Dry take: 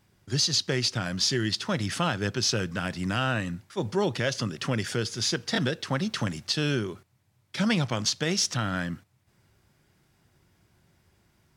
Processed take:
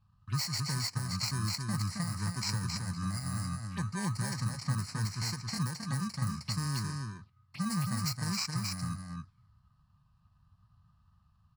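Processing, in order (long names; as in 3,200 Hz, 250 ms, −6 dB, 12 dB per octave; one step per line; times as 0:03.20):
samples in bit-reversed order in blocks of 32 samples
drawn EQ curve 120 Hz 0 dB, 200 Hz −3 dB, 410 Hz −22 dB, 1,400 Hz +2 dB, 9,200 Hz −4 dB
in parallel at +2 dB: downward compressor 5 to 1, threshold −36 dBFS, peak gain reduction 11.5 dB
on the sum: phaser swept by the level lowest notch 350 Hz, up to 3,400 Hz, full sweep at −28 dBFS
formants moved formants −2 semitones
on a send: single-tap delay 269 ms −4 dB
on the sum: low-pass that shuts in the quiet parts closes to 2,300 Hz, open at −22 dBFS
level −4.5 dB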